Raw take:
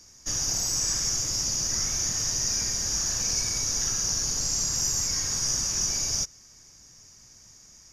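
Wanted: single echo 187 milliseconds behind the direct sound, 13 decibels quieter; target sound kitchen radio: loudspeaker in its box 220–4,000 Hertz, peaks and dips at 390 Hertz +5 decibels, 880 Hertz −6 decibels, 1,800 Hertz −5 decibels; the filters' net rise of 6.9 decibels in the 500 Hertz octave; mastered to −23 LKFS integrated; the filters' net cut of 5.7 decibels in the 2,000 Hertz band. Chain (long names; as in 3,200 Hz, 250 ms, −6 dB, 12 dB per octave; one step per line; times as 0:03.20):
loudspeaker in its box 220–4,000 Hz, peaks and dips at 390 Hz +5 dB, 880 Hz −6 dB, 1,800 Hz −5 dB
parametric band 500 Hz +7 dB
parametric band 2,000 Hz −4.5 dB
single-tap delay 187 ms −13 dB
level +14 dB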